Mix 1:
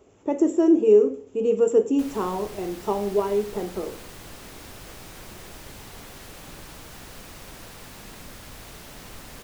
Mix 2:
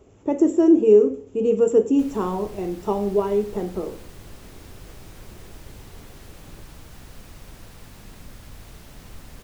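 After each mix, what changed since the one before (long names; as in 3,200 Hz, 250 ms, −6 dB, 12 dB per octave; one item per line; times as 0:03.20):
background −5.5 dB
master: add low-shelf EQ 190 Hz +10.5 dB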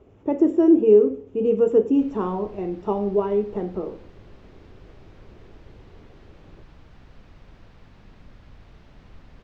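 background −5.0 dB
master: add high-frequency loss of the air 220 metres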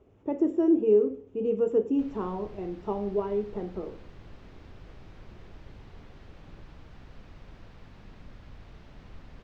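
speech −7.0 dB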